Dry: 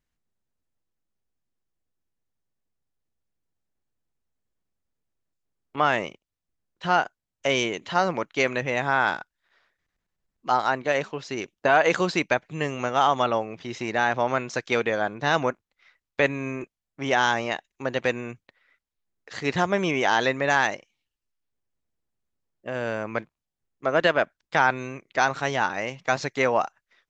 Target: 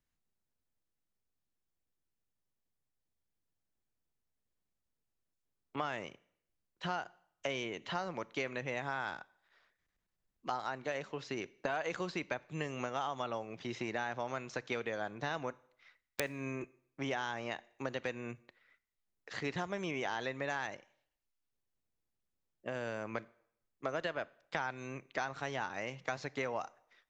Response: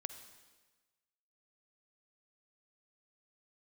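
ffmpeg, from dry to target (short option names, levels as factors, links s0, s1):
-filter_complex "[0:a]acrossover=split=86|4100[s0][s1][s2];[s0]acompressor=threshold=0.00141:ratio=4[s3];[s1]acompressor=threshold=0.0282:ratio=4[s4];[s2]acompressor=threshold=0.00251:ratio=4[s5];[s3][s4][s5]amix=inputs=3:normalize=0,aeval=exprs='(mod(4.22*val(0)+1,2)-1)/4.22':c=same,asplit=2[s6][s7];[1:a]atrim=start_sample=2205,asetrate=83790,aresample=44100[s8];[s7][s8]afir=irnorm=-1:irlink=0,volume=0.841[s9];[s6][s9]amix=inputs=2:normalize=0,volume=0.447"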